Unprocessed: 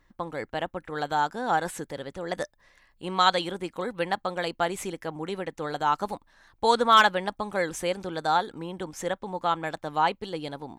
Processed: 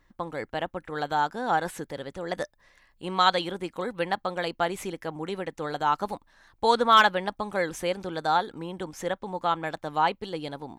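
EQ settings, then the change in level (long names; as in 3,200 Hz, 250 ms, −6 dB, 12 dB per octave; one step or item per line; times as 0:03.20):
dynamic equaliser 8,000 Hz, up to −5 dB, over −52 dBFS, Q 1.6
0.0 dB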